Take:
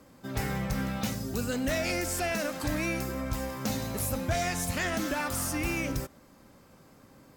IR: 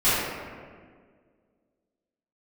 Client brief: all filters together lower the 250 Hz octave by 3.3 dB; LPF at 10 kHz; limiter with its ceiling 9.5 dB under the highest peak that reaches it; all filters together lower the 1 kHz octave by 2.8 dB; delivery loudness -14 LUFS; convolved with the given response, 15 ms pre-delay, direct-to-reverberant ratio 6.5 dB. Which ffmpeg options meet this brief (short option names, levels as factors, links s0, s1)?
-filter_complex "[0:a]lowpass=10000,equalizer=f=250:t=o:g=-4,equalizer=f=1000:t=o:g=-4,alimiter=level_in=1.78:limit=0.0631:level=0:latency=1,volume=0.562,asplit=2[s0][s1];[1:a]atrim=start_sample=2205,adelay=15[s2];[s1][s2]afir=irnorm=-1:irlink=0,volume=0.0596[s3];[s0][s3]amix=inputs=2:normalize=0,volume=13.3"